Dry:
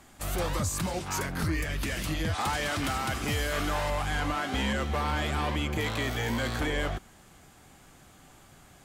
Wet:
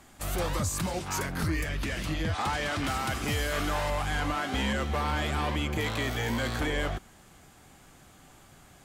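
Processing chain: 1.69–2.88 s: treble shelf 8.4 kHz -10.5 dB

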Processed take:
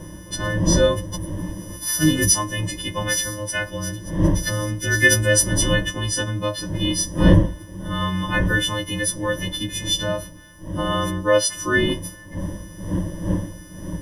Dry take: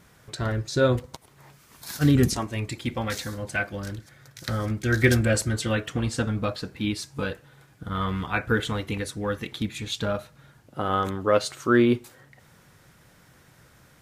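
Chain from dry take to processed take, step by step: partials quantised in pitch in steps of 3 st; wind noise 220 Hz -28 dBFS; rippled EQ curve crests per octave 1.2, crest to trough 17 dB; trim -1 dB

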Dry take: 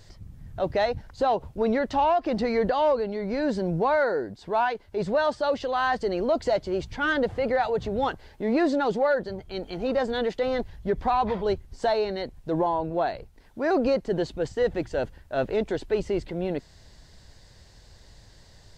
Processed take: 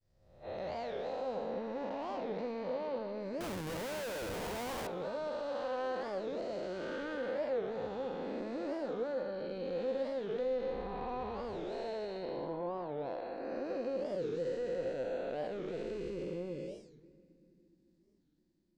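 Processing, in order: spectral blur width 497 ms; expander -42 dBFS; spectral noise reduction 14 dB; compression 10:1, threshold -32 dBFS, peak gain reduction 7 dB; saturation -28.5 dBFS, distortion -21 dB; small resonant body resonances 520/2500 Hz, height 10 dB, ringing for 75 ms; 3.41–4.89 s: Schmitt trigger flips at -40.5 dBFS; on a send at -17 dB: reverberation, pre-delay 3 ms; on the sum: warped record 45 rpm, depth 250 cents; trim -3.5 dB

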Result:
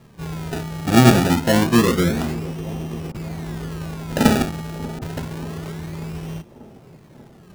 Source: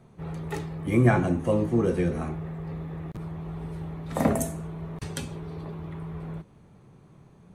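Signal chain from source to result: dynamic bell 230 Hz, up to +6 dB, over -38 dBFS, Q 3; decimation with a swept rate 29×, swing 100% 0.27 Hz; on a send: feedback echo behind a band-pass 588 ms, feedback 67%, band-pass 440 Hz, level -16.5 dB; on the sum: trim +5.5 dB

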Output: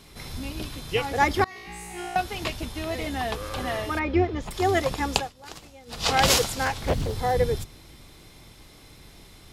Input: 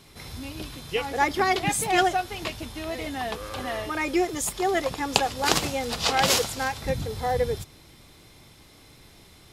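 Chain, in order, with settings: octave divider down 2 oct, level -1 dB; 1.44–2.16 s: feedback comb 59 Hz, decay 1.9 s, harmonics all, mix 100%; 3.99–4.51 s: distance through air 300 m; 5.05–6.13 s: dip -21.5 dB, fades 0.27 s; 6.65–7.13 s: loudspeaker Doppler distortion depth 0.84 ms; trim +1.5 dB

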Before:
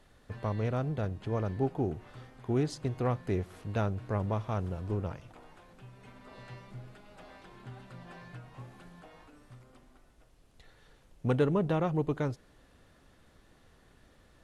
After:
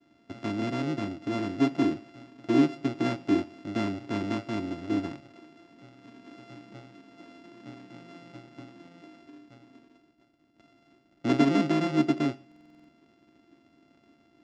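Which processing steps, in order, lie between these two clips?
sorted samples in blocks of 64 samples; peaking EQ 270 Hz +10 dB 1.1 oct; expander -57 dBFS; cabinet simulation 170–5600 Hz, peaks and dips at 180 Hz -5 dB, 310 Hz +9 dB, 480 Hz -7 dB, 730 Hz -4 dB, 1.3 kHz -3 dB, 4.3 kHz -4 dB; reverberation RT60 0.60 s, pre-delay 3 ms, DRR 15.5 dB; buffer glitch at 12.47 s, samples 2048, times 8

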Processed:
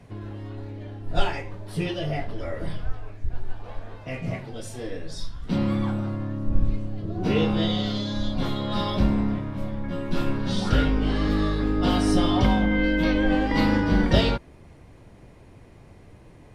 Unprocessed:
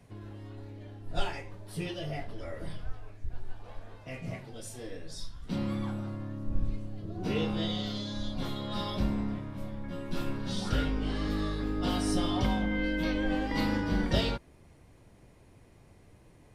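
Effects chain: treble shelf 6 kHz -9.5 dB; trim +8.5 dB

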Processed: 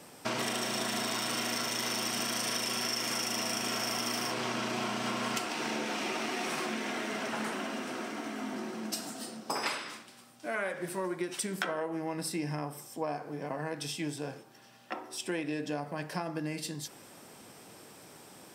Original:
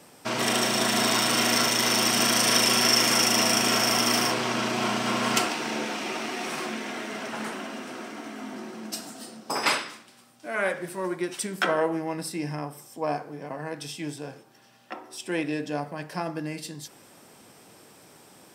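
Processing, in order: compression 10:1, threshold -30 dBFS, peak gain reduction 13.5 dB

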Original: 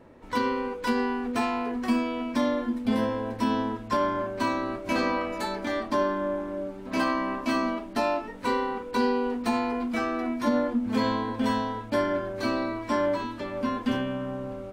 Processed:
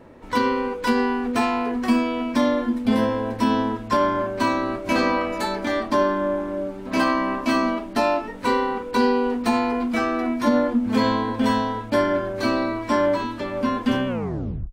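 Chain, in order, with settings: tape stop on the ending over 0.65 s; trim +5.5 dB

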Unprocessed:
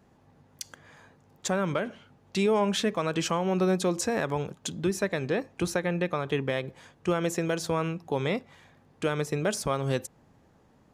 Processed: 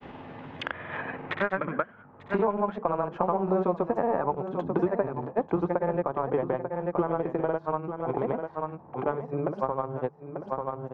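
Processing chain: Doppler pass-by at 4.58 s, 9 m/s, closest 12 m; tone controls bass -3 dB, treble -9 dB; hum notches 50/100/150/200 Hz; granulator, pitch spread up and down by 0 st; in parallel at -8 dB: small samples zeroed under -32.5 dBFS; on the sum: low-pass sweep 3.1 kHz -> 920 Hz, 0.93–2.53 s; on a send: delay 891 ms -13 dB; on the sum: three bands compressed up and down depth 100%; trim +1.5 dB

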